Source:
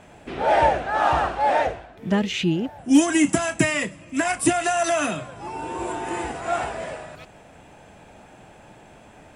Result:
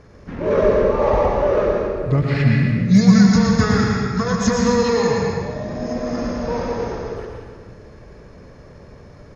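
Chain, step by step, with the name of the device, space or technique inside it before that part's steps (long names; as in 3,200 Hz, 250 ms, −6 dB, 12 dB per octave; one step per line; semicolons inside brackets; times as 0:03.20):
monster voice (pitch shifter −6.5 semitones; low-shelf EQ 150 Hz +9 dB; single-tap delay 112 ms −7 dB; convolution reverb RT60 1.7 s, pre-delay 117 ms, DRR 0.5 dB)
level −1 dB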